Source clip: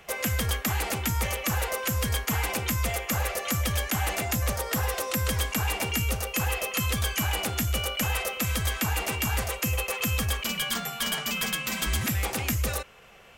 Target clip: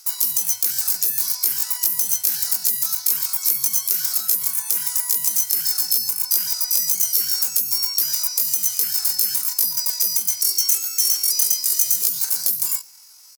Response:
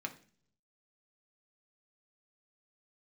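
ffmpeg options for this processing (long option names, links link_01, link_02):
-filter_complex "[0:a]highpass=frequency=570:poles=1,asplit=2[link_01][link_02];[link_02]acrusher=bits=3:mode=log:mix=0:aa=0.000001,volume=-7.5dB[link_03];[link_01][link_03]amix=inputs=2:normalize=0,lowpass=8400,asplit=2[link_04][link_05];[link_05]adelay=108,lowpass=frequency=4300:poles=1,volume=-24dB,asplit=2[link_06][link_07];[link_07]adelay=108,lowpass=frequency=4300:poles=1,volume=0.54,asplit=2[link_08][link_09];[link_09]adelay=108,lowpass=frequency=4300:poles=1,volume=0.54[link_10];[link_06][link_08][link_10]amix=inputs=3:normalize=0[link_11];[link_04][link_11]amix=inputs=2:normalize=0,aexciter=amount=8.8:drive=6:freq=2700,asetrate=83250,aresample=44100,atempo=0.529732,highshelf=frequency=6600:gain=5.5,volume=-10.5dB"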